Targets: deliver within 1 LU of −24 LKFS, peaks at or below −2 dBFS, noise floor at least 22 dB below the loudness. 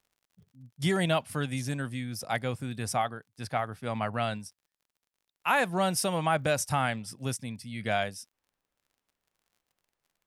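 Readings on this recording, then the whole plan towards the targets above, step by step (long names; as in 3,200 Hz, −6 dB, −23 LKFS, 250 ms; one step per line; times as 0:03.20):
crackle rate 32 per second; integrated loudness −30.5 LKFS; sample peak −12.0 dBFS; target loudness −24.0 LKFS
→ click removal
level +6.5 dB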